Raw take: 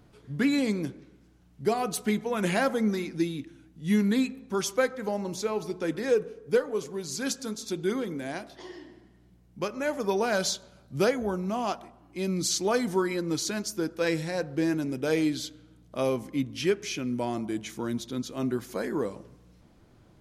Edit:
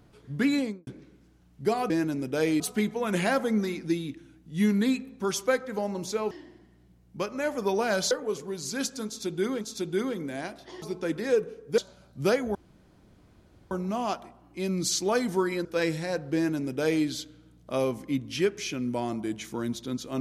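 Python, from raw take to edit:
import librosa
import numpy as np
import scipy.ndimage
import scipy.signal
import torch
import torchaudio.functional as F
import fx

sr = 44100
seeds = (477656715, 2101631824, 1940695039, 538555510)

y = fx.studio_fade_out(x, sr, start_s=0.52, length_s=0.35)
y = fx.edit(y, sr, fx.swap(start_s=5.61, length_s=0.96, other_s=8.73, other_length_s=1.8),
    fx.repeat(start_s=7.52, length_s=0.55, count=2),
    fx.insert_room_tone(at_s=11.3, length_s=1.16),
    fx.cut(start_s=13.24, length_s=0.66),
    fx.duplicate(start_s=14.6, length_s=0.7, to_s=1.9), tone=tone)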